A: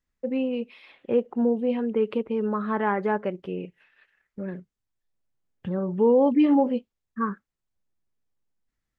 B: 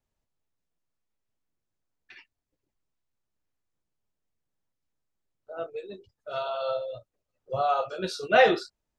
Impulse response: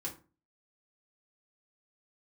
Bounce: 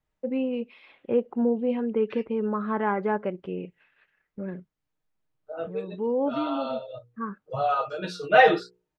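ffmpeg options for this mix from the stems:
-filter_complex "[0:a]bandreject=f=1.8k:w=18,volume=-1dB[a];[1:a]highpass=46,bandreject=f=60:t=h:w=6,bandreject=f=120:t=h:w=6,bandreject=f=180:t=h:w=6,bandreject=f=240:t=h:w=6,bandreject=f=300:t=h:w=6,bandreject=f=360:t=h:w=6,bandreject=f=420:t=h:w=6,bandreject=f=480:t=h:w=6,aecho=1:1:6.5:0.84,volume=0dB,asplit=2[b][c];[c]apad=whole_len=396334[d];[a][d]sidechaincompress=threshold=-37dB:ratio=8:attack=11:release=1060[e];[e][b]amix=inputs=2:normalize=0,bass=f=250:g=0,treble=f=4k:g=-9"

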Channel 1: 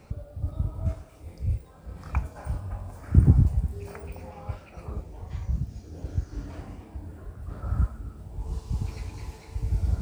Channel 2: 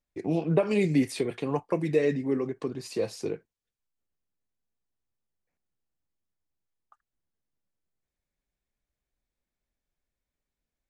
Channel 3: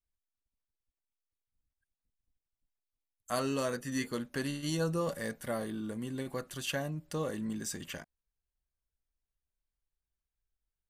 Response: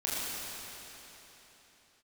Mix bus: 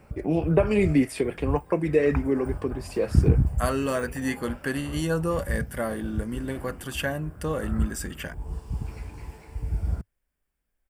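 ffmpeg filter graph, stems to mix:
-filter_complex "[0:a]volume=-0.5dB[a];[1:a]volume=3dB[b];[2:a]acontrast=89,adelay=300,volume=-1dB[c];[a][b][c]amix=inputs=3:normalize=0,equalizer=f=100:t=o:w=0.33:g=-6,equalizer=f=1.6k:t=o:w=0.33:g=4,equalizer=f=4k:t=o:w=0.33:g=-11,equalizer=f=6.3k:t=o:w=0.33:g=-9"

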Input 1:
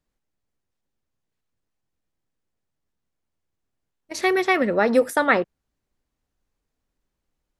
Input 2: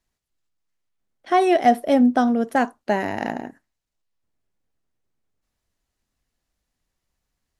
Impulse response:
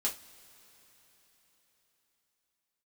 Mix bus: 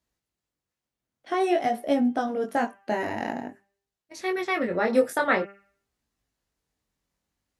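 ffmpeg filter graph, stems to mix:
-filter_complex "[0:a]volume=-1dB[a];[1:a]alimiter=limit=-11.5dB:level=0:latency=1:release=127,volume=-0.5dB,asplit=2[b][c];[c]apad=whole_len=335074[d];[a][d]sidechaincompress=threshold=-37dB:ratio=8:attack=47:release=1300[e];[e][b]amix=inputs=2:normalize=0,highpass=49,bandreject=f=197.8:t=h:w=4,bandreject=f=395.6:t=h:w=4,bandreject=f=593.4:t=h:w=4,bandreject=f=791.2:t=h:w=4,bandreject=f=989:t=h:w=4,bandreject=f=1.1868k:t=h:w=4,bandreject=f=1.3846k:t=h:w=4,bandreject=f=1.5824k:t=h:w=4,bandreject=f=1.7802k:t=h:w=4,bandreject=f=1.978k:t=h:w=4,bandreject=f=2.1758k:t=h:w=4,bandreject=f=2.3736k:t=h:w=4,bandreject=f=2.5714k:t=h:w=4,bandreject=f=2.7692k:t=h:w=4,bandreject=f=2.967k:t=h:w=4,bandreject=f=3.1648k:t=h:w=4,flanger=delay=17.5:depth=5.5:speed=0.5"

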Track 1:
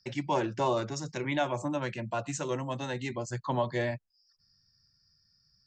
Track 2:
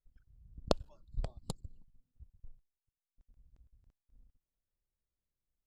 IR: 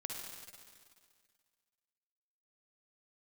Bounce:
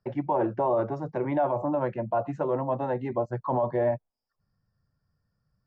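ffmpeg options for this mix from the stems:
-filter_complex "[0:a]equalizer=f=710:t=o:w=1.7:g=10.5,volume=1.5dB[a];[1:a]highpass=260,volume=-16.5dB[b];[a][b]amix=inputs=2:normalize=0,lowpass=1.1k,alimiter=limit=-17.5dB:level=0:latency=1:release=17"

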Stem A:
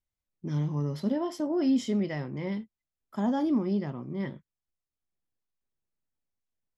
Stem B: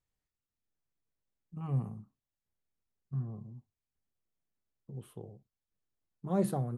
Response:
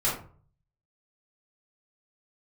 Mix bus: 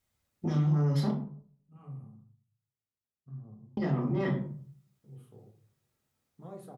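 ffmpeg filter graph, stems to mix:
-filter_complex "[0:a]acompressor=threshold=-29dB:ratio=5,aeval=exprs='0.075*sin(PI/2*1.78*val(0)/0.075)':c=same,volume=-2dB,asplit=3[a][b][c];[a]atrim=end=1.11,asetpts=PTS-STARTPTS,afade=t=out:st=1.106:d=0.004:c=hsin[d];[b]atrim=start=1.11:end=3.77,asetpts=PTS-STARTPTS,volume=0[e];[c]atrim=start=3.77,asetpts=PTS-STARTPTS,afade=t=in:d=0.004:c=hsin[f];[d][e][f]concat=n=3:v=0:a=1,asplit=3[g][h][i];[h]volume=-6dB[j];[1:a]acompressor=threshold=-37dB:ratio=3,adelay=150,volume=-10dB,asplit=2[k][l];[l]volume=-11dB[m];[i]apad=whole_len=305292[n];[k][n]sidechaincompress=threshold=-44dB:ratio=8:attack=16:release=1300[o];[2:a]atrim=start_sample=2205[p];[j][m]amix=inputs=2:normalize=0[q];[q][p]afir=irnorm=-1:irlink=0[r];[g][o][r]amix=inputs=3:normalize=0,highpass=73,acompressor=threshold=-35dB:ratio=1.5"

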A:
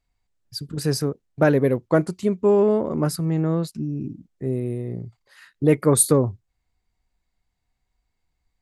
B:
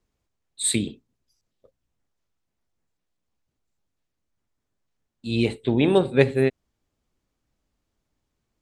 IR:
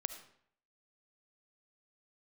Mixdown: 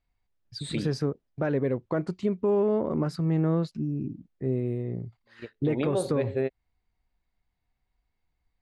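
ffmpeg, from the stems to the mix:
-filter_complex "[0:a]volume=-2.5dB,asplit=2[a][b];[1:a]equalizer=f=580:t=o:w=0.85:g=9.5,volume=-7dB[c];[b]apad=whole_len=380077[d];[c][d]sidechaingate=range=-37dB:threshold=-47dB:ratio=16:detection=peak[e];[a][e]amix=inputs=2:normalize=0,lowpass=3.9k,alimiter=limit=-17dB:level=0:latency=1:release=139"

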